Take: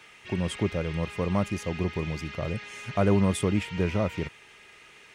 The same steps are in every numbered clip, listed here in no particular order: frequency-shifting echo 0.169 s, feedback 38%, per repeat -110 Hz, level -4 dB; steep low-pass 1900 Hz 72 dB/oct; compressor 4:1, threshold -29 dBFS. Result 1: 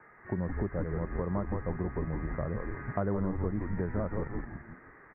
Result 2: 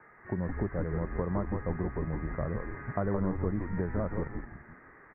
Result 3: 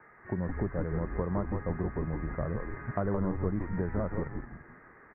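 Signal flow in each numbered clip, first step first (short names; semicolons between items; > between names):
frequency-shifting echo > steep low-pass > compressor; compressor > frequency-shifting echo > steep low-pass; steep low-pass > compressor > frequency-shifting echo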